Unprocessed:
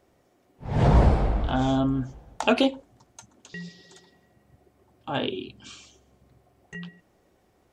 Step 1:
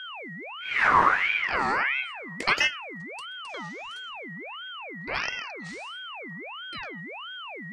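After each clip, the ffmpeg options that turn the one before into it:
ffmpeg -i in.wav -af "aeval=exprs='val(0)+0.0224*sin(2*PI*860*n/s)':channel_layout=same,aeval=exprs='val(0)*sin(2*PI*1700*n/s+1700*0.4/1.5*sin(2*PI*1.5*n/s))':channel_layout=same" out.wav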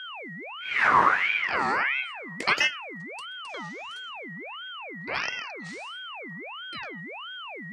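ffmpeg -i in.wav -af "highpass=100" out.wav

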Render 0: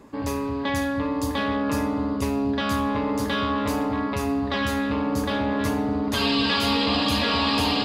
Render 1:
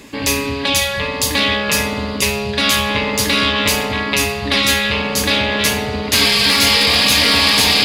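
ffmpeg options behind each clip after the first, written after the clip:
ffmpeg -i in.wav -af "highshelf=frequency=1700:width_type=q:width=1.5:gain=12,acontrast=47,afftfilt=real='re*lt(hypot(re,im),0.708)':imag='im*lt(hypot(re,im),0.708)':win_size=1024:overlap=0.75,volume=2dB" out.wav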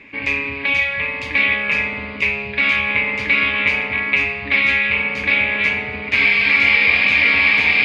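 ffmpeg -i in.wav -af "lowpass=frequency=2300:width_type=q:width=9.5,volume=-9.5dB" out.wav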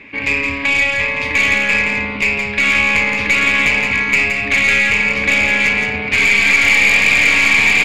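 ffmpeg -i in.wav -af "aeval=exprs='(tanh(3.98*val(0)+0.2)-tanh(0.2))/3.98':channel_layout=same,aecho=1:1:169:0.531,volume=4.5dB" out.wav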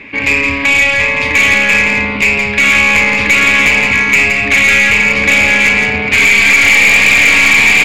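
ffmpeg -i in.wav -af "acontrast=66" out.wav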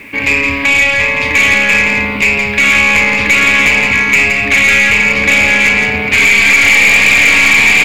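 ffmpeg -i in.wav -af "acrusher=bits=6:mix=0:aa=0.5" out.wav

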